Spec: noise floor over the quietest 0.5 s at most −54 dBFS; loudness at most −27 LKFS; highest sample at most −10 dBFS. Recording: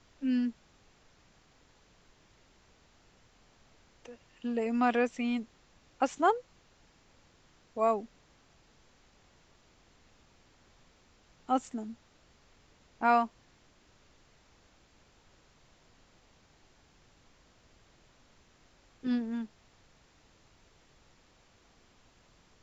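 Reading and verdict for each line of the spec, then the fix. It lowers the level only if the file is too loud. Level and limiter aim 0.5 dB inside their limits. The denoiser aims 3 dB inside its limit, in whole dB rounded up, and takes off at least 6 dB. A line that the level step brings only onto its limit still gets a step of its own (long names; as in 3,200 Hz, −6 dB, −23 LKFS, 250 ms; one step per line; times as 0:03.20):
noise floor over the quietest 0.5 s −64 dBFS: in spec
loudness −31.5 LKFS: in spec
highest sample −13.5 dBFS: in spec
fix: no processing needed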